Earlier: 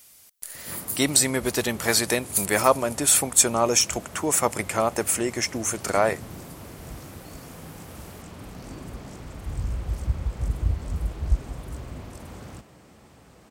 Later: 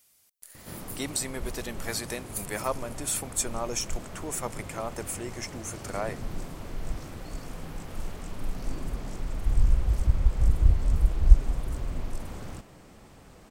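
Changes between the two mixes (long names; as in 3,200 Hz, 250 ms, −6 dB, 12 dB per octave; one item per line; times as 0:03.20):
speech −11.5 dB
background: remove high-pass filter 55 Hz 24 dB per octave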